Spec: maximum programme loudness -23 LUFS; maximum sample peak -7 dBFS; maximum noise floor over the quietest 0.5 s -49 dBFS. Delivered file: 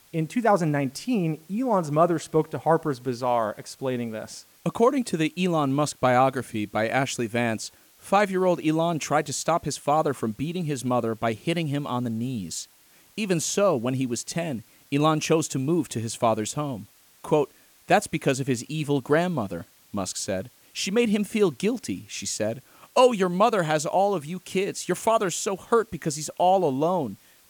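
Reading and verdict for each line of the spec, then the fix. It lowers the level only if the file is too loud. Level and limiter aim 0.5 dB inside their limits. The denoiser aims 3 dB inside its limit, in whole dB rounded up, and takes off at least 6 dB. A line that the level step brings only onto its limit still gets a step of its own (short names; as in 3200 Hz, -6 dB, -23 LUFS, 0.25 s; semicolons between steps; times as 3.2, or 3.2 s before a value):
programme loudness -25.0 LUFS: OK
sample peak -6.0 dBFS: fail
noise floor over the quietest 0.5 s -57 dBFS: OK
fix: limiter -7.5 dBFS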